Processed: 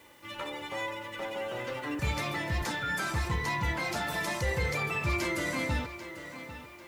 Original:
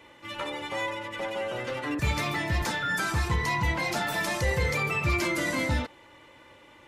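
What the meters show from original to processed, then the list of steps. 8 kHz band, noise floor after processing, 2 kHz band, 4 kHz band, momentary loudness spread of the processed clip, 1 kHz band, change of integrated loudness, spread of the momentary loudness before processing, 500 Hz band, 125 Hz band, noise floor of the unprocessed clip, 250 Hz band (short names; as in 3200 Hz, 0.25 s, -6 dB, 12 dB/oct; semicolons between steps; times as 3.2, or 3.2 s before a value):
-4.0 dB, -50 dBFS, -3.5 dB, -3.5 dB, 11 LU, -3.5 dB, -4.0 dB, 7 LU, -3.5 dB, -4.0 dB, -54 dBFS, -3.5 dB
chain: requantised 10-bit, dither triangular; tape echo 0.794 s, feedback 46%, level -11 dB, low-pass 5800 Hz; gain -4 dB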